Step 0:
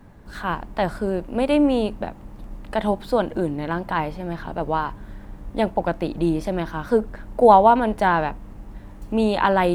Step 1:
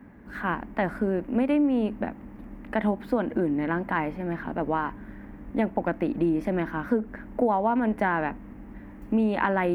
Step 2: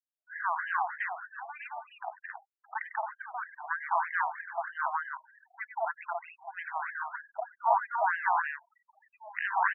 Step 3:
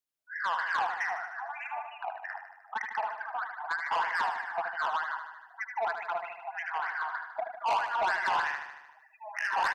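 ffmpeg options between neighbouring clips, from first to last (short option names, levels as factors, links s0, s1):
-af "equalizer=f=125:t=o:w=1:g=-4,equalizer=f=250:t=o:w=1:g=11,equalizer=f=2000:t=o:w=1:g=10,equalizer=f=4000:t=o:w=1:g=-10,equalizer=f=8000:t=o:w=1:g=-8,acompressor=threshold=0.178:ratio=6,highpass=40,volume=0.562"
-af "aecho=1:1:99.13|218.7|274.1:0.316|1|0.631,afftfilt=real='re*gte(hypot(re,im),0.0126)':imag='im*gte(hypot(re,im),0.0126)':win_size=1024:overlap=0.75,afftfilt=real='re*between(b*sr/1024,900*pow(2300/900,0.5+0.5*sin(2*PI*3.2*pts/sr))/1.41,900*pow(2300/900,0.5+0.5*sin(2*PI*3.2*pts/sr))*1.41)':imag='im*between(b*sr/1024,900*pow(2300/900,0.5+0.5*sin(2*PI*3.2*pts/sr))/1.41,900*pow(2300/900,0.5+0.5*sin(2*PI*3.2*pts/sr))*1.41)':win_size=1024:overlap=0.75"
-filter_complex "[0:a]asoftclip=type=tanh:threshold=0.0398,asplit=2[s0][s1];[s1]aecho=0:1:76|152|228|304|380|456|532|608:0.398|0.239|0.143|0.086|0.0516|0.031|0.0186|0.0111[s2];[s0][s2]amix=inputs=2:normalize=0,volume=1.5"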